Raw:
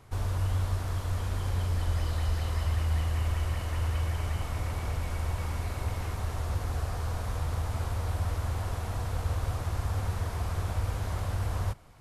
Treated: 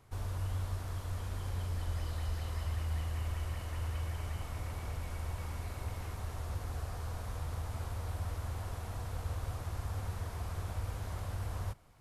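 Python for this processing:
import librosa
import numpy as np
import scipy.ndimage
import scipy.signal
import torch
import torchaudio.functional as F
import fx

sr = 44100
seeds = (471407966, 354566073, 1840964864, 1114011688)

y = fx.high_shelf(x, sr, hz=11000.0, db=4.5)
y = F.gain(torch.from_numpy(y), -7.5).numpy()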